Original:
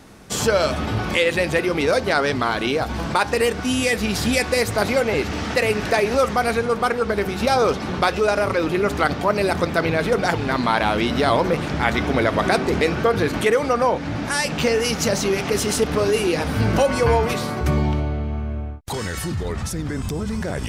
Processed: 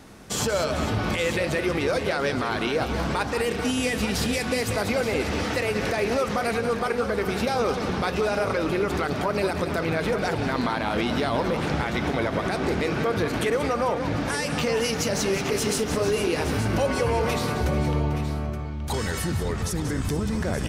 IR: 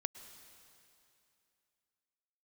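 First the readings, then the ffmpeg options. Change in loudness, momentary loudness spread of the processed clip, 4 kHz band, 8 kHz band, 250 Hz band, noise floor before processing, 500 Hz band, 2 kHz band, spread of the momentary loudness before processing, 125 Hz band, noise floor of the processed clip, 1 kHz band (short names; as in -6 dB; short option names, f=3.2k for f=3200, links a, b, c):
-4.5 dB, 3 LU, -4.5 dB, -3.5 dB, -3.5 dB, -28 dBFS, -5.0 dB, -5.5 dB, 7 LU, -3.0 dB, -30 dBFS, -5.5 dB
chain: -af "alimiter=limit=-14.5dB:level=0:latency=1:release=95,aecho=1:1:184|445|873:0.335|0.178|0.266,volume=-1.5dB"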